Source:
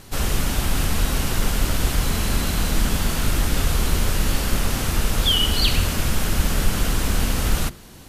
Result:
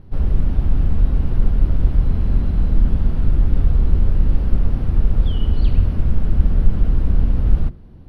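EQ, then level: boxcar filter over 6 samples; tilt shelf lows +9 dB; bass shelf 150 Hz +9.5 dB; -11.0 dB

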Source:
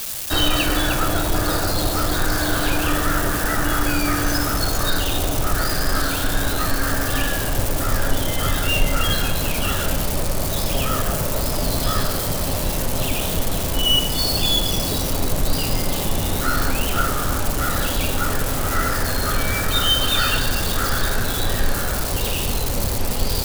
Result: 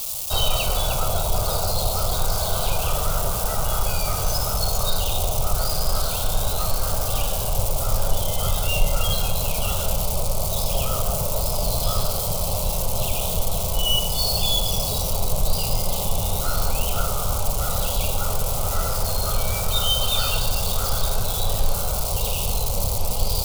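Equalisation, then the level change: static phaser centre 720 Hz, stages 4; 0.0 dB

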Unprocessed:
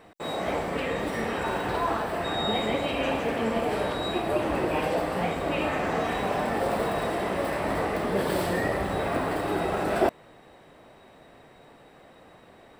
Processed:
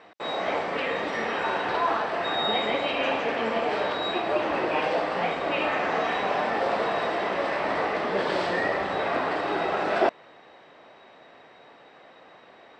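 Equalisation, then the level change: high-pass 670 Hz 6 dB/octave; low-pass 6.3 kHz 24 dB/octave; distance through air 64 m; +5.0 dB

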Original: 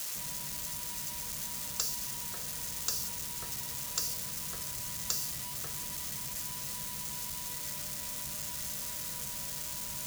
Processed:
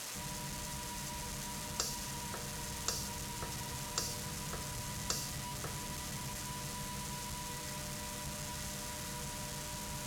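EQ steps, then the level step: low-pass 11 kHz 12 dB/octave; treble shelf 2.5 kHz -9.5 dB; +5.0 dB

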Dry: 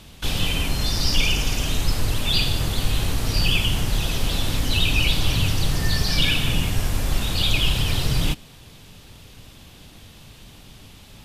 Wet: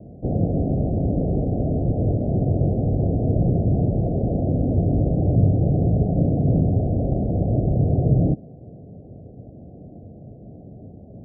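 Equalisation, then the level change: high-pass 100 Hz 12 dB/octave; steep low-pass 720 Hz 96 dB/octave; +9.0 dB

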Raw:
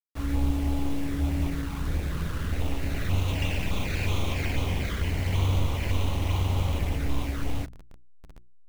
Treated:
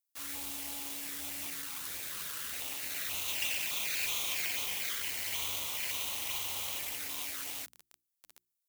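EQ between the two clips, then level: differentiator; bass shelf 270 Hz -4 dB; +8.0 dB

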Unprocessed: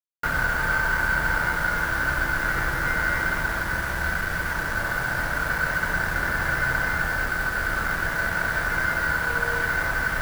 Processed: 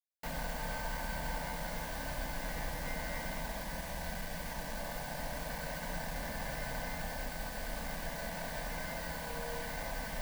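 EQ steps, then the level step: static phaser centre 370 Hz, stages 6; -7.0 dB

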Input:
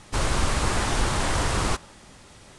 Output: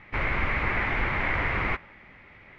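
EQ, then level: four-pole ladder low-pass 2.3 kHz, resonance 75%; +7.0 dB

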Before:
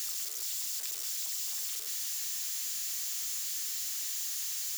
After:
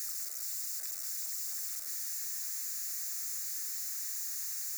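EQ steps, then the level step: static phaser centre 630 Hz, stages 8; -1.0 dB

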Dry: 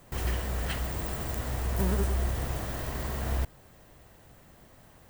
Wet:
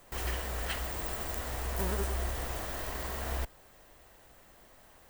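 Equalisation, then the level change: peaking EQ 130 Hz -12 dB 2.1 oct; 0.0 dB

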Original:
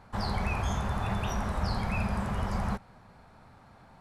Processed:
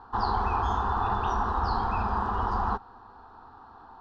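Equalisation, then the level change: low-pass 4.6 kHz 24 dB/octave; peaking EQ 900 Hz +9.5 dB 2.2 oct; static phaser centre 590 Hz, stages 6; +2.0 dB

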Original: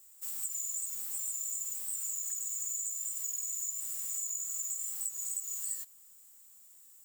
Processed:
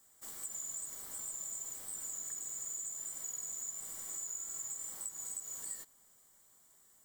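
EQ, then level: treble shelf 2.3 kHz -10.5 dB; treble shelf 9.6 kHz -8.5 dB; band-stop 2.6 kHz, Q 5.3; +7.5 dB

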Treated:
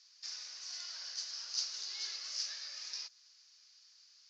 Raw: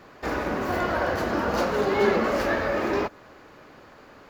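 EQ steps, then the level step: Butterworth band-pass 5.5 kHz, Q 3.1; distance through air 85 m; +12.0 dB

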